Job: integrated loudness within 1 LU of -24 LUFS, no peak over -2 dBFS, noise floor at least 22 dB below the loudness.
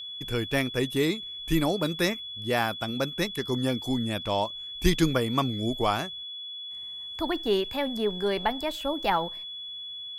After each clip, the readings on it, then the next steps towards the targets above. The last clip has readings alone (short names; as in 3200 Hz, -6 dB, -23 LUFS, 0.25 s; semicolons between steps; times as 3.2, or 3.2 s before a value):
steady tone 3400 Hz; tone level -36 dBFS; loudness -28.5 LUFS; peak -8.5 dBFS; loudness target -24.0 LUFS
-> notch 3400 Hz, Q 30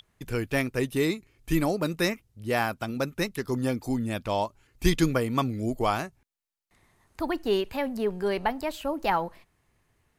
steady tone none; loudness -28.5 LUFS; peak -8.5 dBFS; loudness target -24.0 LUFS
-> gain +4.5 dB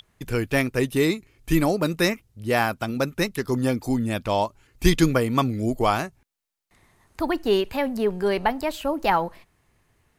loudness -24.0 LUFS; peak -4.0 dBFS; noise floor -67 dBFS